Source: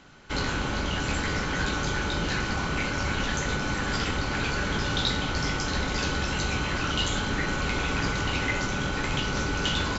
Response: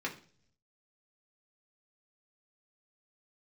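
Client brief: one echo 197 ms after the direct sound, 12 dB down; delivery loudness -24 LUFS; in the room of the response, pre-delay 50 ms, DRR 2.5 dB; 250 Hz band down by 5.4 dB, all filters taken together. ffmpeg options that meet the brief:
-filter_complex "[0:a]equalizer=f=250:t=o:g=-7.5,aecho=1:1:197:0.251,asplit=2[s0][s1];[1:a]atrim=start_sample=2205,adelay=50[s2];[s1][s2]afir=irnorm=-1:irlink=0,volume=0.473[s3];[s0][s3]amix=inputs=2:normalize=0,volume=1.41"

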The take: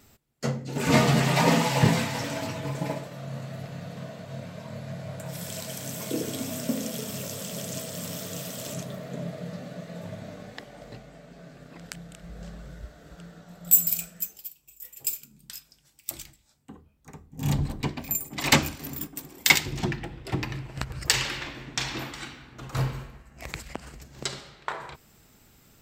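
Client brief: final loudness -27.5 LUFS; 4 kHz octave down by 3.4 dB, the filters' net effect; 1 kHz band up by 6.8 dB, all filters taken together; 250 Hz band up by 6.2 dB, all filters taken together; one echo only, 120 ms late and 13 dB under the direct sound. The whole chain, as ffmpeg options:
-af "equalizer=f=250:t=o:g=7.5,equalizer=f=1000:t=o:g=8,equalizer=f=4000:t=o:g=-5,aecho=1:1:120:0.224,volume=0.794"

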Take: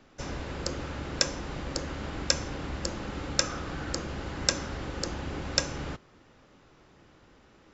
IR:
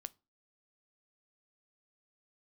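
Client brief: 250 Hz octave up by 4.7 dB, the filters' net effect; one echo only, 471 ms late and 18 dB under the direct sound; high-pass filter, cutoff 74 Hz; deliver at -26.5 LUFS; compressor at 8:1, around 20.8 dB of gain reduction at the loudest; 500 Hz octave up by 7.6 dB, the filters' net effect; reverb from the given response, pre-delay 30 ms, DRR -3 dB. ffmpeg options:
-filter_complex "[0:a]highpass=74,equalizer=f=250:t=o:g=3.5,equalizer=f=500:t=o:g=8,acompressor=threshold=0.00708:ratio=8,aecho=1:1:471:0.126,asplit=2[s0][s1];[1:a]atrim=start_sample=2205,adelay=30[s2];[s1][s2]afir=irnorm=-1:irlink=0,volume=2.37[s3];[s0][s3]amix=inputs=2:normalize=0,volume=5.96"

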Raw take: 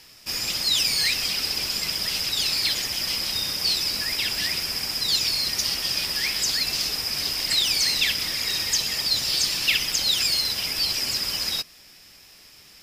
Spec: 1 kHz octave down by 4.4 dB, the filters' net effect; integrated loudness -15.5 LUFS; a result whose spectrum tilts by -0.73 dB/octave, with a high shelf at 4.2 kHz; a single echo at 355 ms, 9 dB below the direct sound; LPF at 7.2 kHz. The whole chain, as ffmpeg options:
-af "lowpass=7200,equalizer=f=1000:t=o:g=-6.5,highshelf=f=4200:g=8.5,aecho=1:1:355:0.355,volume=1.33"

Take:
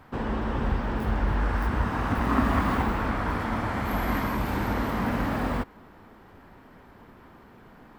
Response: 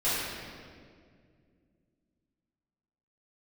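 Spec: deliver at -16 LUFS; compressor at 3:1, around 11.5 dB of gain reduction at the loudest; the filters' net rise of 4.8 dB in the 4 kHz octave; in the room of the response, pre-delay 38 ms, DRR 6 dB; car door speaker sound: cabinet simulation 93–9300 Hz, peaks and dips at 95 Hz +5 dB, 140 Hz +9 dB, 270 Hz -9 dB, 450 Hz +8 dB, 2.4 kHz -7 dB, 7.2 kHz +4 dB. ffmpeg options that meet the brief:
-filter_complex "[0:a]equalizer=f=4000:t=o:g=7.5,acompressor=threshold=0.0178:ratio=3,asplit=2[s0][s1];[1:a]atrim=start_sample=2205,adelay=38[s2];[s1][s2]afir=irnorm=-1:irlink=0,volume=0.133[s3];[s0][s3]amix=inputs=2:normalize=0,highpass=93,equalizer=f=95:t=q:w=4:g=5,equalizer=f=140:t=q:w=4:g=9,equalizer=f=270:t=q:w=4:g=-9,equalizer=f=450:t=q:w=4:g=8,equalizer=f=2400:t=q:w=4:g=-7,equalizer=f=7200:t=q:w=4:g=4,lowpass=f=9300:w=0.5412,lowpass=f=9300:w=1.3066,volume=9.44"

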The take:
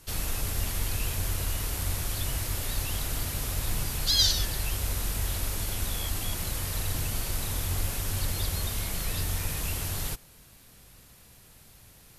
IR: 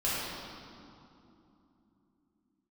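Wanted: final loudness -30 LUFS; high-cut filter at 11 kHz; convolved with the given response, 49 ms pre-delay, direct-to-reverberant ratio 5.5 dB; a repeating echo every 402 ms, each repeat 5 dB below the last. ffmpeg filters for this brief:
-filter_complex "[0:a]lowpass=11000,aecho=1:1:402|804|1206|1608|2010|2412|2814:0.562|0.315|0.176|0.0988|0.0553|0.031|0.0173,asplit=2[s0][s1];[1:a]atrim=start_sample=2205,adelay=49[s2];[s1][s2]afir=irnorm=-1:irlink=0,volume=0.178[s3];[s0][s3]amix=inputs=2:normalize=0,volume=0.841"

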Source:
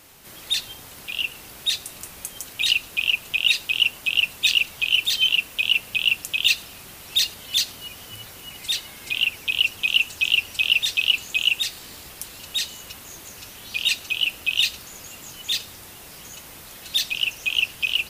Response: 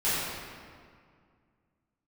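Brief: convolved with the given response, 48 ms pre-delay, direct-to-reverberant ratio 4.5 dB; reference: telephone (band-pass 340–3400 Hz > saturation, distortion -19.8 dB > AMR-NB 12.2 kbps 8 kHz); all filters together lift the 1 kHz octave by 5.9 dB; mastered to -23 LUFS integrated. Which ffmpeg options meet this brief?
-filter_complex "[0:a]equalizer=f=1000:t=o:g=7.5,asplit=2[s0][s1];[1:a]atrim=start_sample=2205,adelay=48[s2];[s1][s2]afir=irnorm=-1:irlink=0,volume=0.141[s3];[s0][s3]amix=inputs=2:normalize=0,highpass=340,lowpass=3400,asoftclip=threshold=0.282,volume=1.06" -ar 8000 -c:a libopencore_amrnb -b:a 12200

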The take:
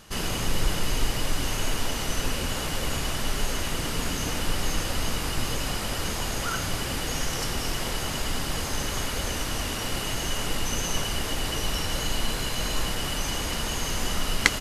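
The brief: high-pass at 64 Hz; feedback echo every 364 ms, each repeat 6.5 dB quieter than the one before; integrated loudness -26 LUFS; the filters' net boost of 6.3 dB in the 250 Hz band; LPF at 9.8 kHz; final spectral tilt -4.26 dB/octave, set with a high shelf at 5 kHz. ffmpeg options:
-af "highpass=64,lowpass=9800,equalizer=f=250:t=o:g=8,highshelf=f=5000:g=-8.5,aecho=1:1:364|728|1092|1456|1820|2184:0.473|0.222|0.105|0.0491|0.0231|0.0109,volume=1.33"

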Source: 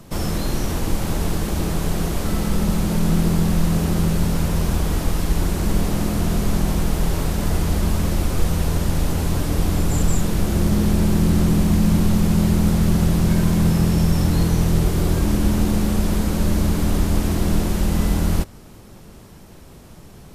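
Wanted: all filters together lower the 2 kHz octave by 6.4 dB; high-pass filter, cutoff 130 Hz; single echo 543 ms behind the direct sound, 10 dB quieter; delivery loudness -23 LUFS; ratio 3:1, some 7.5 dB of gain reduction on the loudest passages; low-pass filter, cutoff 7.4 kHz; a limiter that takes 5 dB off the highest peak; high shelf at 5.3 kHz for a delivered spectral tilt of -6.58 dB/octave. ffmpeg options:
-af "highpass=130,lowpass=7400,equalizer=f=2000:t=o:g=-8,highshelf=f=5300:g=-3.5,acompressor=threshold=0.0501:ratio=3,alimiter=limit=0.0841:level=0:latency=1,aecho=1:1:543:0.316,volume=2.24"

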